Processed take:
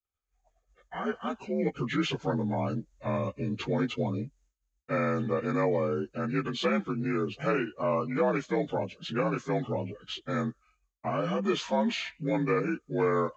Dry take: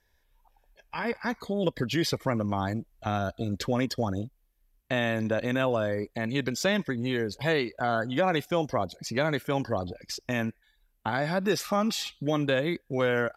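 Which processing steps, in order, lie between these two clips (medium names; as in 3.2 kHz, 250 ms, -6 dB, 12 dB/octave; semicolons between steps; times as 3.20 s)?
frequency axis rescaled in octaves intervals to 84%; expander -59 dBFS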